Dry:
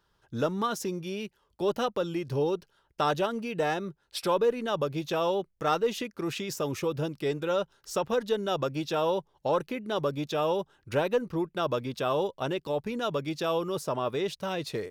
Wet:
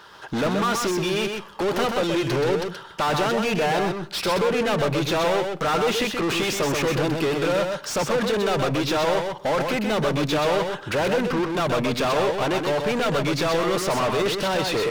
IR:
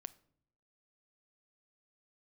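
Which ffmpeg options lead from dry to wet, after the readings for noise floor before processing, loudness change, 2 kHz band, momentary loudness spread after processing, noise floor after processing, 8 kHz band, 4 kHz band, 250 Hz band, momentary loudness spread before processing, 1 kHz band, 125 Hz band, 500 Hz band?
−72 dBFS, +7.0 dB, +12.0 dB, 3 LU, −40 dBFS, +11.0 dB, +10.5 dB, +8.0 dB, 6 LU, +7.0 dB, +8.0 dB, +6.0 dB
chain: -filter_complex "[0:a]asoftclip=type=tanh:threshold=-21dB,asplit=2[link_01][link_02];[link_02]highpass=frequency=720:poles=1,volume=32dB,asoftclip=type=tanh:threshold=-21dB[link_03];[link_01][link_03]amix=inputs=2:normalize=0,lowpass=frequency=3400:poles=1,volume=-6dB,asplit=2[link_04][link_05];[1:a]atrim=start_sample=2205,adelay=127[link_06];[link_05][link_06]afir=irnorm=-1:irlink=0,volume=0dB[link_07];[link_04][link_07]amix=inputs=2:normalize=0,volume=3.5dB"

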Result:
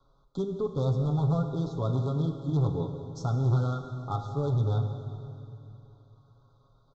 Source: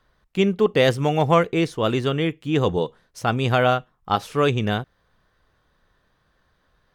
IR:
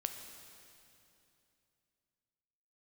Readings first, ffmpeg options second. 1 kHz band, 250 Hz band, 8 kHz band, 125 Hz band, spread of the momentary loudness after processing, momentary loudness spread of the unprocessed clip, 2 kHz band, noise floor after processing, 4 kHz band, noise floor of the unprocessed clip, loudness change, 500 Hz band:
−15.0 dB, −8.0 dB, below −10 dB, −0.5 dB, 14 LU, 8 LU, below −25 dB, −64 dBFS, −20.5 dB, −67 dBFS, −8.0 dB, −13.0 dB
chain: -filter_complex "[0:a]equalizer=frequency=5700:width=0.8:gain=-6,aecho=1:1:7.3:0.81,acrossover=split=170[link_01][link_02];[link_02]acompressor=threshold=-39dB:ratio=2[link_03];[link_01][link_03]amix=inputs=2:normalize=0,aresample=16000,volume=20.5dB,asoftclip=hard,volume=-20.5dB,aresample=44100,asuperstop=centerf=2200:order=20:qfactor=1.1[link_04];[1:a]atrim=start_sample=2205[link_05];[link_04][link_05]afir=irnorm=-1:irlink=0,volume=-1.5dB"

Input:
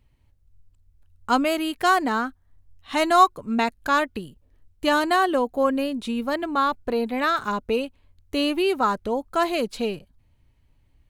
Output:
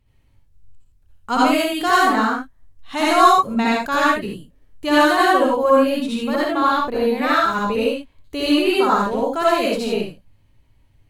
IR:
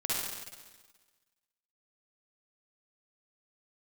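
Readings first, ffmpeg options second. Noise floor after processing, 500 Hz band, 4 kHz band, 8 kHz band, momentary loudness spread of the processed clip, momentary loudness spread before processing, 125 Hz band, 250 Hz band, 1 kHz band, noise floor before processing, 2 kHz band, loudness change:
−57 dBFS, +6.0 dB, +5.5 dB, +5.5 dB, 11 LU, 9 LU, can't be measured, +5.5 dB, +5.0 dB, −62 dBFS, +6.0 dB, +5.5 dB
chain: -filter_complex "[1:a]atrim=start_sample=2205,atrim=end_sample=6174,asetrate=36162,aresample=44100[link_01];[0:a][link_01]afir=irnorm=-1:irlink=0,volume=-1dB"

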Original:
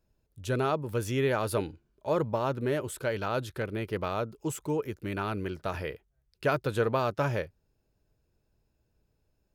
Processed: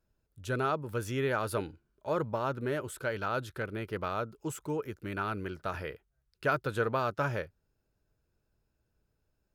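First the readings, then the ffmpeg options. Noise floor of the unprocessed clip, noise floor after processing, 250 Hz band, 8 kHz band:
−76 dBFS, −80 dBFS, −4.0 dB, −4.0 dB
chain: -af "equalizer=frequency=1400:width=2.7:gain=6.5,volume=-4dB"

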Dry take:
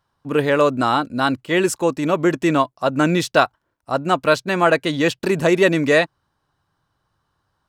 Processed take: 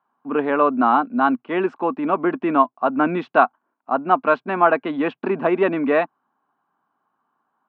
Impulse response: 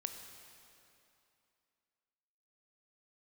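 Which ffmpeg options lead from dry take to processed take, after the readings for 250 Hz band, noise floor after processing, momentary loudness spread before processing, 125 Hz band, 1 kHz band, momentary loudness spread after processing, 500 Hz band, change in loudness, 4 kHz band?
−1.5 dB, −75 dBFS, 5 LU, −11.0 dB, +2.5 dB, 6 LU, −2.5 dB, −1.5 dB, −15.0 dB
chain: -af "highpass=frequency=230:width=0.5412,highpass=frequency=230:width=1.3066,equalizer=frequency=240:width_type=q:width=4:gain=7,equalizer=frequency=330:width_type=q:width=4:gain=-4,equalizer=frequency=530:width_type=q:width=4:gain=-8,equalizer=frequency=760:width_type=q:width=4:gain=5,equalizer=frequency=1100:width_type=q:width=4:gain=4,equalizer=frequency=1900:width_type=q:width=4:gain=-8,lowpass=frequency=2200:width=0.5412,lowpass=frequency=2200:width=1.3066"

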